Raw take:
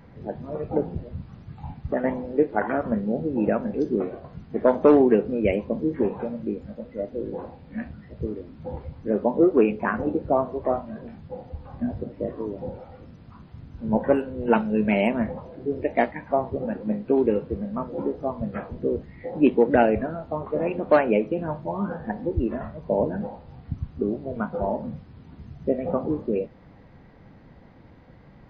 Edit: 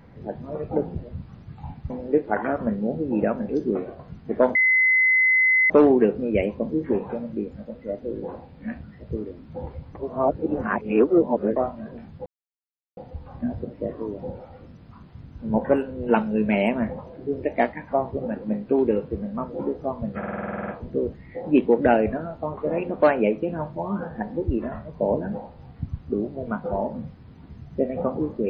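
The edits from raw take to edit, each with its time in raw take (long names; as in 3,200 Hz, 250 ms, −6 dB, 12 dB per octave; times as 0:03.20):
0:01.90–0:02.15: remove
0:04.80: insert tone 2,040 Hz −15 dBFS 1.15 s
0:09.05–0:10.66: reverse
0:11.36: splice in silence 0.71 s
0:18.57: stutter 0.05 s, 11 plays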